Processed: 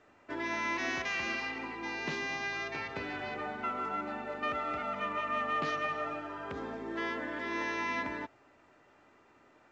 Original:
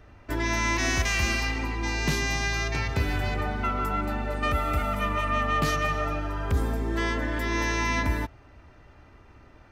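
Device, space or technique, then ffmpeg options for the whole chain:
telephone: -af "highpass=270,lowpass=3400,volume=-6dB" -ar 16000 -c:a pcm_mulaw

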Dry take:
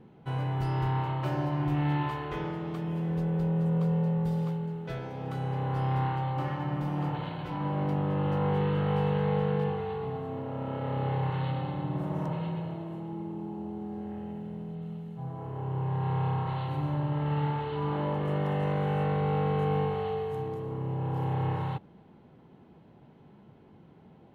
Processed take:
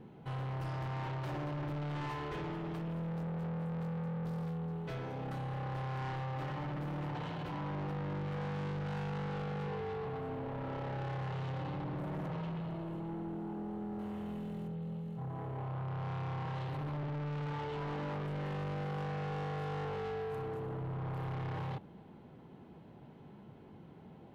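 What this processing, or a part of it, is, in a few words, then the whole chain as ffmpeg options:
saturation between pre-emphasis and de-emphasis: -filter_complex "[0:a]highshelf=frequency=3900:gain=8,asoftclip=type=tanh:threshold=-37.5dB,highshelf=frequency=3900:gain=-8,asettb=1/sr,asplit=3[link_01][link_02][link_03];[link_01]atrim=end=13.994[link_04];[link_02]atrim=start=13.99:end=14.68,asetpts=PTS-STARTPTS,afade=type=in:duration=0.004:curve=qsin,afade=type=out:start_time=0.686:duration=0.004:curve=qsin,highshelf=frequency=2700:gain=10.5[link_05];[link_03]atrim=start=14.676[link_06];[link_04][link_05]acrossfade=duration=0.004:curve1=hsin:curve2=qsin[link_07];[link_07][link_06]acrossfade=duration=0.004:curve1=qsin:curve2=hsin,volume=1dB"

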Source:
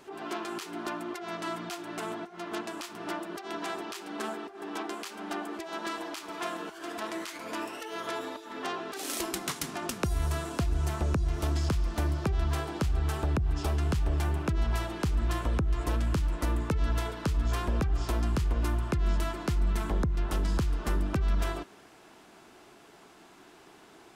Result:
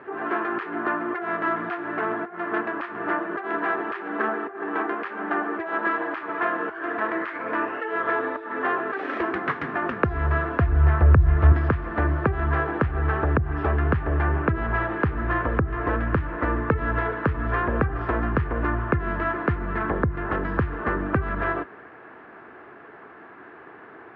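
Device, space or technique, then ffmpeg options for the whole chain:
bass cabinet: -filter_complex "[0:a]asettb=1/sr,asplit=3[link_01][link_02][link_03];[link_01]atrim=end=10.164[link_04];[link_02]atrim=start=10.16:end=11.52,asetpts=PTS-STARTPTS,afade=type=in:duration=0.004:curve=qsin,afade=type=out:start_time=1.356:duration=0.004:curve=qsin,asubboost=boost=10:cutoff=130[link_05];[link_03]atrim=start=11.516[link_06];[link_04][link_05]acrossfade=duration=0.004:curve1=hsin:curve2=qsin[link_07];[link_07][link_06]acrossfade=duration=0.004:curve1=qsin:curve2=hsin,highpass=frequency=70:width=0.5412,highpass=frequency=70:width=1.3066,equalizer=frequency=180:width_type=q:width=4:gain=-5,equalizer=frequency=470:width_type=q:width=4:gain=5,equalizer=frequency=1200:width_type=q:width=4:gain=5,equalizer=frequency=1700:width_type=q:width=4:gain=9,lowpass=frequency=2100:width=0.5412,lowpass=frequency=2100:width=1.3066,volume=7.5dB"

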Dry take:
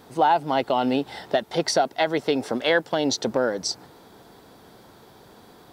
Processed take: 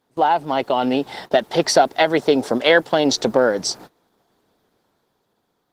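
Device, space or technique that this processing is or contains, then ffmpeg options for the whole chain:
video call: -filter_complex "[0:a]asettb=1/sr,asplit=3[link_01][link_02][link_03];[link_01]atrim=end=2.204[link_04];[link_02]atrim=start=2.2:end=2.61,asetpts=PTS-STARTPTS,afade=type=in:duration=0.004:curve=qsin,afade=type=out:start_time=0.406:duration=0.004:curve=qsin,equalizer=frequency=2300:width_type=o:width=1.2:gain=-5[link_05];[link_03]atrim=start=2.606[link_06];[link_04][link_05]acrossfade=duration=0.004:curve1=hsin:curve2=qsin[link_07];[link_07][link_06]acrossfade=duration=0.004:curve1=qsin:curve2=hsin,highpass=frequency=140:poles=1,dynaudnorm=framelen=200:gausssize=11:maxgain=6dB,agate=range=-21dB:threshold=-37dB:ratio=16:detection=peak,volume=2.5dB" -ar 48000 -c:a libopus -b:a 16k

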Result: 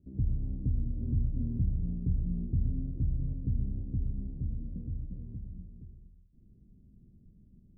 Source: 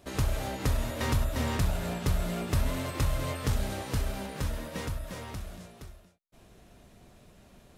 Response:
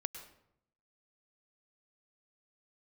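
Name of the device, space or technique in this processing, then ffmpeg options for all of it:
next room: -filter_complex "[0:a]lowpass=frequency=260:width=0.5412,lowpass=frequency=260:width=1.3066[link_01];[1:a]atrim=start_sample=2205[link_02];[link_01][link_02]afir=irnorm=-1:irlink=0"

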